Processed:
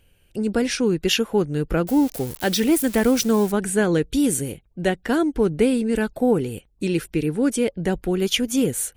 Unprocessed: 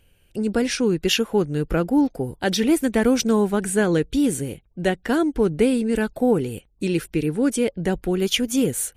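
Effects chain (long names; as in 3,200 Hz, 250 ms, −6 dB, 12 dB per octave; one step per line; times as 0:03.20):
0:01.87–0:03.52: spike at every zero crossing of −23 dBFS
0:04.12–0:04.52: high-shelf EQ 5,900 Hz +7.5 dB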